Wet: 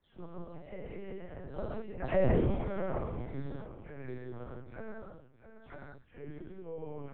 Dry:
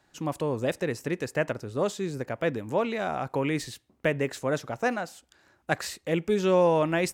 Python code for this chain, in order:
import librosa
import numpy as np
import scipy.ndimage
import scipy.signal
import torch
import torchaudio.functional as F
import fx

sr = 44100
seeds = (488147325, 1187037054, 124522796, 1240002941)

p1 = fx.spec_delay(x, sr, highs='early', ms=256)
p2 = fx.doppler_pass(p1, sr, speed_mps=39, closest_m=2.2, pass_at_s=2.3)
p3 = fx.peak_eq(p2, sr, hz=120.0, db=14.0, octaves=1.0)
p4 = fx.chopper(p3, sr, hz=1.5, depth_pct=65, duty_pct=65)
p5 = p4 + fx.echo_feedback(p4, sr, ms=667, feedback_pct=20, wet_db=-16.5, dry=0)
p6 = fx.rev_gated(p5, sr, seeds[0], gate_ms=220, shape='flat', drr_db=-5.5)
p7 = fx.lpc_vocoder(p6, sr, seeds[1], excitation='pitch_kept', order=8)
p8 = fx.high_shelf(p7, sr, hz=2200.0, db=-10.5)
p9 = fx.band_squash(p8, sr, depth_pct=40)
y = p9 * librosa.db_to_amplitude(8.5)